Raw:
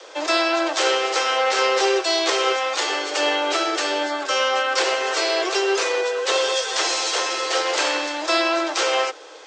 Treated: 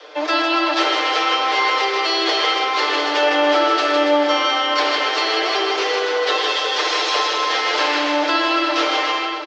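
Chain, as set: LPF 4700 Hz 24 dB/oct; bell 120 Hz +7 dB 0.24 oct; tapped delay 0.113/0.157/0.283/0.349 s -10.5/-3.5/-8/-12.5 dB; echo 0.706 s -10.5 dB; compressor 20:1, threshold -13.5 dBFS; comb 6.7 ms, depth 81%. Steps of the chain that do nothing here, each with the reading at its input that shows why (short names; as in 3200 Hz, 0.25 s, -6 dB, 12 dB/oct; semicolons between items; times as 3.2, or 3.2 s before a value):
bell 120 Hz: input band starts at 250 Hz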